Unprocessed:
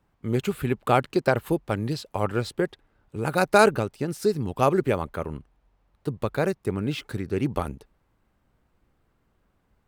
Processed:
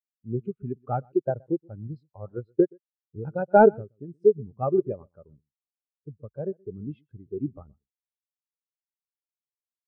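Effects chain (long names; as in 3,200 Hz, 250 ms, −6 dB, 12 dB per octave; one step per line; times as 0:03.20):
variable-slope delta modulation 64 kbit/s
0:02.35–0:03.37: transient designer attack +6 dB, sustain −5 dB
single-tap delay 124 ms −12.5 dB
every bin expanded away from the loudest bin 2.5 to 1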